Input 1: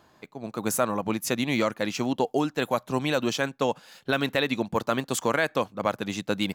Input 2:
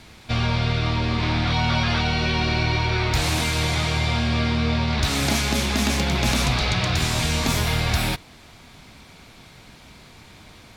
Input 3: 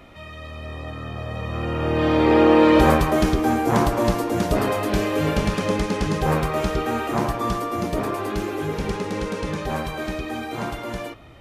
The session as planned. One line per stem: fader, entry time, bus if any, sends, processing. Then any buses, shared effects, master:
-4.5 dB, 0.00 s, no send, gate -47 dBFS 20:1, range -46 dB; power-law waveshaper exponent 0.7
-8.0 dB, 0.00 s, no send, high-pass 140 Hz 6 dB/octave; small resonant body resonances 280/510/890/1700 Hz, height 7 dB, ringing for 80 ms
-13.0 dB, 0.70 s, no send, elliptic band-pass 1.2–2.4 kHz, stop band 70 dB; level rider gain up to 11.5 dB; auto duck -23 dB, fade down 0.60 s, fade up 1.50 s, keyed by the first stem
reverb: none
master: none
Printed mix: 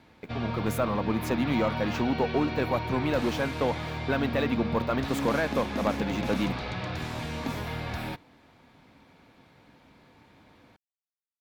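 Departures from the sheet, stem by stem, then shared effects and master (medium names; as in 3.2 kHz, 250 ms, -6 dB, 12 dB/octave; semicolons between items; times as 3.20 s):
stem 3: muted; master: extra peaking EQ 8.1 kHz -14.5 dB 2.4 oct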